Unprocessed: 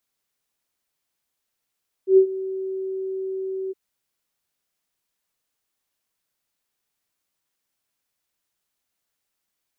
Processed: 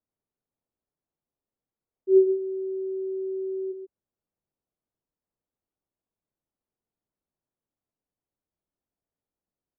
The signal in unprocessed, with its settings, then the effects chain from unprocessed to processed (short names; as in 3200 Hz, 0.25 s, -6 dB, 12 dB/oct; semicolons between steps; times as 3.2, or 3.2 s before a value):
ADSR sine 381 Hz, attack 0.102 s, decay 88 ms, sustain -17.5 dB, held 1.64 s, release 25 ms -8 dBFS
Bessel low-pass 500 Hz, order 2; on a send: echo 0.132 s -8 dB